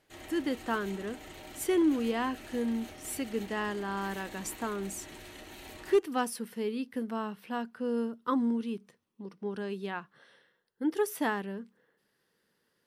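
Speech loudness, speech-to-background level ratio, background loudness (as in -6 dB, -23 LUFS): -33.5 LUFS, 14.0 dB, -47.5 LUFS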